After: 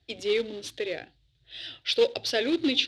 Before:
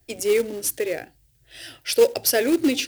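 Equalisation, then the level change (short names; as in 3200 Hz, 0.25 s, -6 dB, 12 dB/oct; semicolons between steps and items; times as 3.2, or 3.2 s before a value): HPF 45 Hz; synth low-pass 3700 Hz, resonance Q 5.3; low shelf 170 Hz +3.5 dB; -7.0 dB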